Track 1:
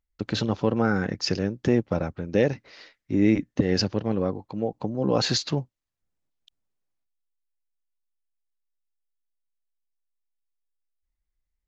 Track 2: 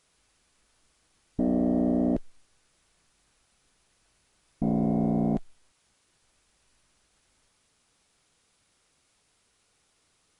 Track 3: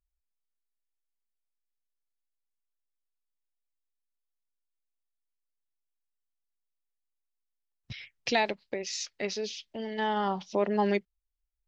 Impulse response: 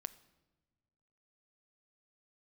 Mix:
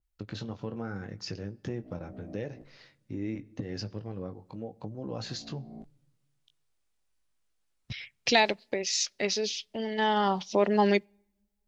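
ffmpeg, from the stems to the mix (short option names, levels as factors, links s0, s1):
-filter_complex "[0:a]equalizer=f=110:t=o:w=0.48:g=7.5,volume=0.447,asplit=2[s0][s1];[s1]volume=0.299[s2];[1:a]adelay=450,volume=0.168[s3];[2:a]volume=1.33,asplit=2[s4][s5];[s5]volume=0.106[s6];[s0][s3]amix=inputs=2:normalize=0,flanger=delay=18.5:depth=4.2:speed=0.79,acompressor=threshold=0.0112:ratio=6,volume=1[s7];[3:a]atrim=start_sample=2205[s8];[s2][s6]amix=inputs=2:normalize=0[s9];[s9][s8]afir=irnorm=-1:irlink=0[s10];[s4][s7][s10]amix=inputs=3:normalize=0,adynamicequalizer=threshold=0.0141:dfrequency=3000:dqfactor=0.7:tfrequency=3000:tqfactor=0.7:attack=5:release=100:ratio=0.375:range=3:mode=boostabove:tftype=highshelf"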